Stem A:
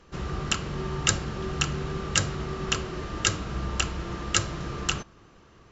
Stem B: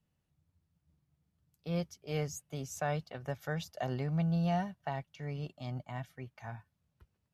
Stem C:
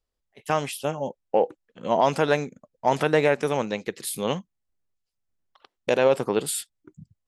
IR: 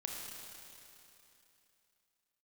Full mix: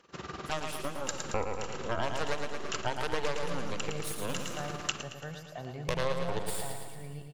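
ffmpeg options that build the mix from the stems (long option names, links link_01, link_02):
-filter_complex "[0:a]tremolo=f=20:d=0.75,highpass=frequency=400:poles=1,volume=-1.5dB,asplit=3[link_01][link_02][link_03];[link_02]volume=-14.5dB[link_04];[link_03]volume=-14dB[link_05];[1:a]adelay=1750,volume=-6dB,asplit=2[link_06][link_07];[link_07]volume=-6.5dB[link_08];[2:a]aeval=exprs='0.473*(cos(1*acos(clip(val(0)/0.473,-1,1)))-cos(1*PI/2))+0.15*(cos(6*acos(clip(val(0)/0.473,-1,1)))-cos(6*PI/2))':channel_layout=same,volume=-10.5dB,asplit=4[link_09][link_10][link_11][link_12];[link_10]volume=-15.5dB[link_13];[link_11]volume=-5.5dB[link_14];[link_12]apad=whole_len=251885[link_15];[link_01][link_15]sidechaincompress=threshold=-46dB:ratio=8:attack=16:release=238[link_16];[3:a]atrim=start_sample=2205[link_17];[link_04][link_13]amix=inputs=2:normalize=0[link_18];[link_18][link_17]afir=irnorm=-1:irlink=0[link_19];[link_05][link_08][link_14]amix=inputs=3:normalize=0,aecho=0:1:112|224|336|448|560|672|784|896|1008:1|0.57|0.325|0.185|0.106|0.0602|0.0343|0.0195|0.0111[link_20];[link_16][link_06][link_09][link_19][link_20]amix=inputs=5:normalize=0,acompressor=threshold=-28dB:ratio=2.5"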